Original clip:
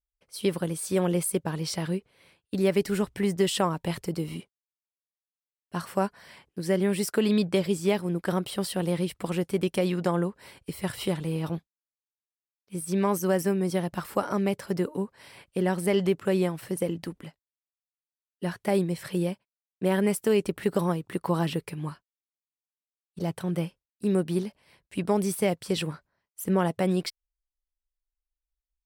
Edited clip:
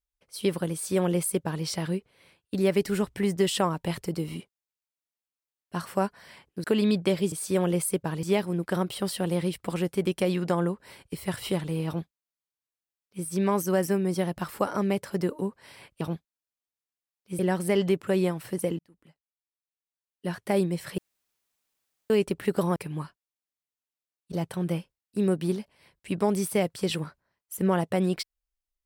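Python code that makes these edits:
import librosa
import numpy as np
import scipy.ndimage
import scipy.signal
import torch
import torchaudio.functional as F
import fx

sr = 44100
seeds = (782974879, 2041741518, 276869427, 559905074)

y = fx.edit(x, sr, fx.duplicate(start_s=0.73, length_s=0.91, to_s=7.79),
    fx.cut(start_s=6.64, length_s=0.47),
    fx.duplicate(start_s=11.43, length_s=1.38, to_s=15.57),
    fx.fade_in_span(start_s=16.97, length_s=1.69),
    fx.room_tone_fill(start_s=19.16, length_s=1.12),
    fx.cut(start_s=20.94, length_s=0.69), tone=tone)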